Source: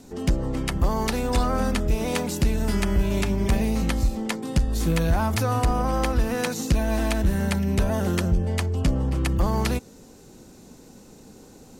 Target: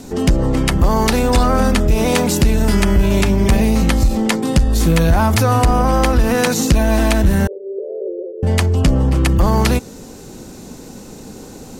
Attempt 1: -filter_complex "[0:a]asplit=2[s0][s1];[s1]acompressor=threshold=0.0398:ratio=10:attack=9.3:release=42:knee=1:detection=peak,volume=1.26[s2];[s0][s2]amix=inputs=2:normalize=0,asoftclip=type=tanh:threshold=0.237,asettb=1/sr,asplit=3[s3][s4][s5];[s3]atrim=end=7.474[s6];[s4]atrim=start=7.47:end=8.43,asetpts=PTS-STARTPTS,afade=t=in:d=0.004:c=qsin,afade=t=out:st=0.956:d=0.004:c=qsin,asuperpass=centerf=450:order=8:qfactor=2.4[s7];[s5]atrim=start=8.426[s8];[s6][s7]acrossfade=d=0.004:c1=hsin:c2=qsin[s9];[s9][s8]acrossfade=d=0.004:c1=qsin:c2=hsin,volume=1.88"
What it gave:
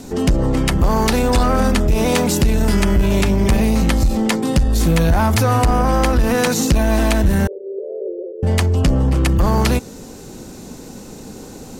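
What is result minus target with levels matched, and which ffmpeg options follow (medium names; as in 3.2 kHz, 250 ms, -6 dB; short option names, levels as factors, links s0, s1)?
saturation: distortion +16 dB
-filter_complex "[0:a]asplit=2[s0][s1];[s1]acompressor=threshold=0.0398:ratio=10:attack=9.3:release=42:knee=1:detection=peak,volume=1.26[s2];[s0][s2]amix=inputs=2:normalize=0,asoftclip=type=tanh:threshold=0.668,asettb=1/sr,asplit=3[s3][s4][s5];[s3]atrim=end=7.474[s6];[s4]atrim=start=7.47:end=8.43,asetpts=PTS-STARTPTS,afade=t=in:d=0.004:c=qsin,afade=t=out:st=0.956:d=0.004:c=qsin,asuperpass=centerf=450:order=8:qfactor=2.4[s7];[s5]atrim=start=8.426[s8];[s6][s7]acrossfade=d=0.004:c1=hsin:c2=qsin[s9];[s9][s8]acrossfade=d=0.004:c1=qsin:c2=hsin,volume=1.88"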